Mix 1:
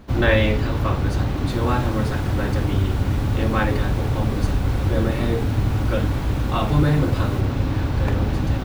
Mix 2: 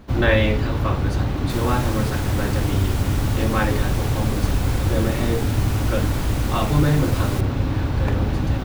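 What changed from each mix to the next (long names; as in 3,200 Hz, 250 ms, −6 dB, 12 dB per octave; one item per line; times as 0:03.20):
background +11.5 dB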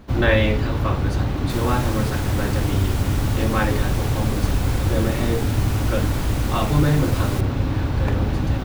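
nothing changed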